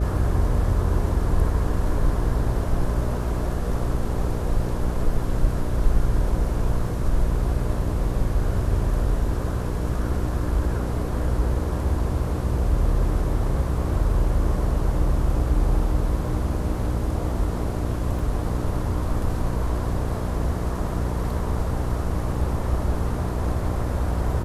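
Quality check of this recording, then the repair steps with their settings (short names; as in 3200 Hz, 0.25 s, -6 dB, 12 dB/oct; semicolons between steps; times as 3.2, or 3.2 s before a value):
buzz 60 Hz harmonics 10 -27 dBFS
18.19 gap 2.6 ms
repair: de-hum 60 Hz, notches 10; interpolate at 18.19, 2.6 ms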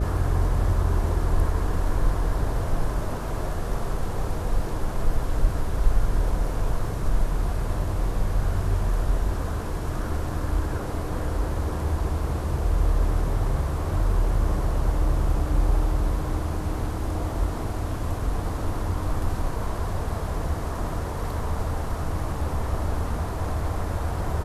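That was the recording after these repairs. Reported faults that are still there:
none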